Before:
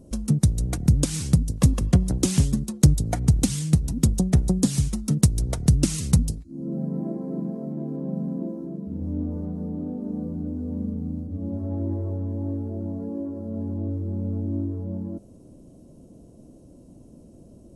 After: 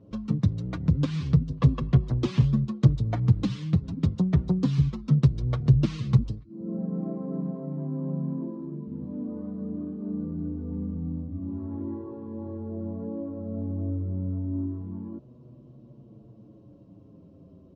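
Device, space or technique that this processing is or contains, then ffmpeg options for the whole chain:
barber-pole flanger into a guitar amplifier: -filter_complex "[0:a]asplit=2[s0][s1];[s1]adelay=6.9,afreqshift=-0.3[s2];[s0][s2]amix=inputs=2:normalize=1,asoftclip=type=tanh:threshold=0.211,highpass=77,equalizer=f=130:t=q:w=4:g=9,equalizer=f=740:t=q:w=4:g=-4,equalizer=f=1100:t=q:w=4:g=9,lowpass=f=3900:w=0.5412,lowpass=f=3900:w=1.3066"

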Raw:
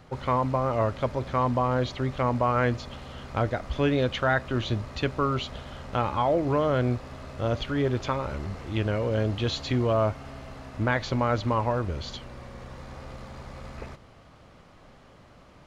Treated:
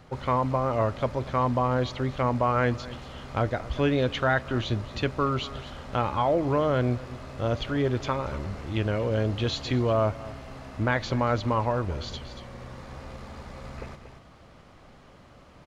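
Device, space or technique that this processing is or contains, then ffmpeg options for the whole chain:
ducked delay: -filter_complex "[0:a]asplit=3[s0][s1][s2];[s1]adelay=233,volume=0.376[s3];[s2]apad=whole_len=700980[s4];[s3][s4]sidechaincompress=threshold=0.0224:ratio=8:attack=16:release=554[s5];[s0][s5]amix=inputs=2:normalize=0"

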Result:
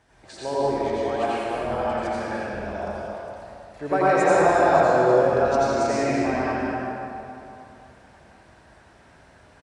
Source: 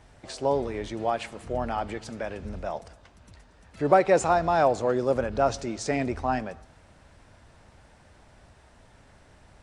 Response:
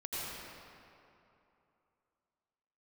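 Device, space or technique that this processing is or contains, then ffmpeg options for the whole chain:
stadium PA: -filter_complex "[0:a]highpass=f=140:p=1,equalizer=f=1600:t=o:w=0.22:g=6,aecho=1:1:198.3|244.9:0.355|0.282[s0];[1:a]atrim=start_sample=2205[s1];[s0][s1]afir=irnorm=-1:irlink=0"

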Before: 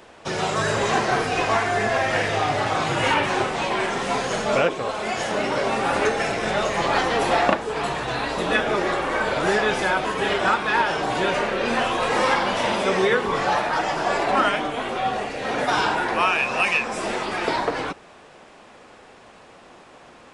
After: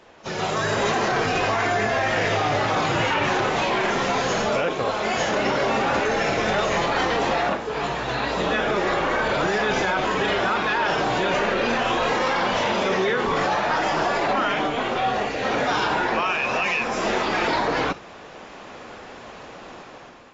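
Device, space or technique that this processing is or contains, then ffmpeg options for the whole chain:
low-bitrate web radio: -af "dynaudnorm=f=240:g=5:m=3.35,alimiter=limit=0.299:level=0:latency=1:release=17,volume=0.631" -ar 16000 -c:a aac -b:a 24k

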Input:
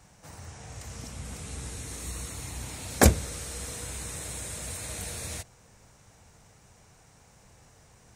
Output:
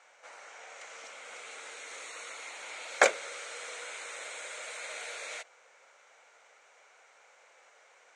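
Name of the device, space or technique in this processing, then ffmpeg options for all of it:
phone speaker on a table: -af "highpass=f=490:w=0.5412,highpass=f=490:w=1.3066,equalizer=f=540:t=q:w=4:g=5,equalizer=f=1400:t=q:w=4:g=8,equalizer=f=2200:t=q:w=4:g=9,equalizer=f=3200:t=q:w=4:g=3,equalizer=f=5200:t=q:w=4:g=-7,lowpass=f=7000:w=0.5412,lowpass=f=7000:w=1.3066,volume=0.794"

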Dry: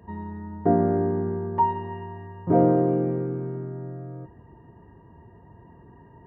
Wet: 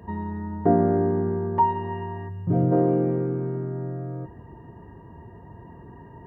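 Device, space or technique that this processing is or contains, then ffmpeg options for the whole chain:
parallel compression: -filter_complex "[0:a]asplit=2[s0][s1];[s1]acompressor=threshold=0.02:ratio=6,volume=0.891[s2];[s0][s2]amix=inputs=2:normalize=0,asplit=3[s3][s4][s5];[s3]afade=t=out:st=2.28:d=0.02[s6];[s4]equalizer=f=125:t=o:w=1:g=6,equalizer=f=250:t=o:w=1:g=-5,equalizer=f=500:t=o:w=1:g=-8,equalizer=f=1000:t=o:w=1:g=-11,equalizer=f=2000:t=o:w=1:g=-7,afade=t=in:st=2.28:d=0.02,afade=t=out:st=2.71:d=0.02[s7];[s5]afade=t=in:st=2.71:d=0.02[s8];[s6][s7][s8]amix=inputs=3:normalize=0"

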